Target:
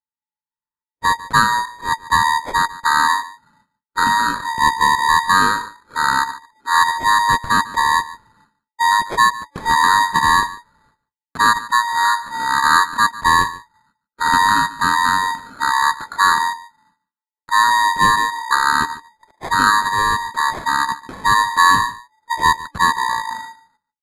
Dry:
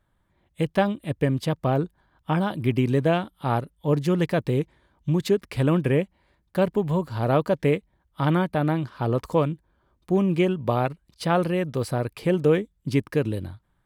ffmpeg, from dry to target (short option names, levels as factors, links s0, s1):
-af "afftfilt=real='real(if(lt(b,272),68*(eq(floor(b/68),0)*2+eq(floor(b/68),1)*0+eq(floor(b/68),2)*3+eq(floor(b/68),3)*1)+mod(b,68),b),0)':imag='imag(if(lt(b,272),68*(eq(floor(b/68),0)*2+eq(floor(b/68),1)*0+eq(floor(b/68),2)*3+eq(floor(b/68),3)*1)+mod(b,68),b),0)':win_size=2048:overlap=0.75,equalizer=f=180:t=o:w=1.2:g=-8.5,acrusher=samples=9:mix=1:aa=0.000001,highshelf=f=6900:g=-9,acontrast=46,agate=range=0.0112:threshold=0.00282:ratio=16:detection=peak,aecho=1:1:84:0.133,asetrate=25442,aresample=44100,volume=1.26"